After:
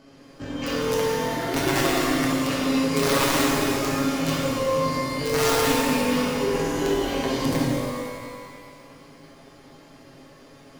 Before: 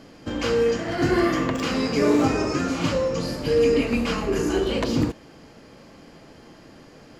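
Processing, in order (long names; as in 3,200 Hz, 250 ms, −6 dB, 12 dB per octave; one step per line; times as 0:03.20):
wrap-around overflow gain 12.5 dB
time stretch by overlap-add 1.5×, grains 44 ms
reverb with rising layers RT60 2 s, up +12 semitones, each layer −8 dB, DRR −4 dB
level −6 dB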